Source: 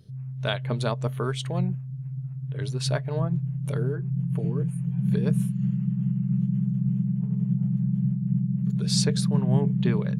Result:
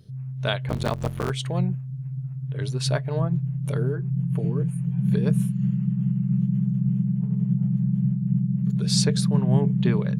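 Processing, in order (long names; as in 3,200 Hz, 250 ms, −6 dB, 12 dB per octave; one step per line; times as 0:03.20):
0:00.68–0:01.30: sub-harmonics by changed cycles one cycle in 3, muted
level +2 dB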